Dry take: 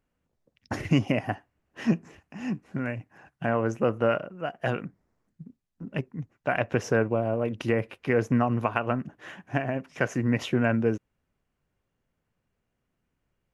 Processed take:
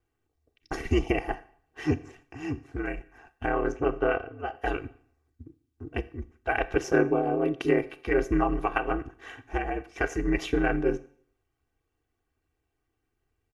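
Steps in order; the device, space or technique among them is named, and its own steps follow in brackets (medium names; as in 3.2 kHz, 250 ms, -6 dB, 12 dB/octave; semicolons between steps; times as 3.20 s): 3.71–4.54 s: low-pass 3.9 kHz -> 6 kHz 12 dB/octave; 6.76–7.83 s: resonant low shelf 160 Hz -14 dB, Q 3; Schroeder reverb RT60 0.54 s, combs from 29 ms, DRR 15 dB; ring-modulated robot voice (ring modulator 75 Hz; comb 2.6 ms, depth 84%)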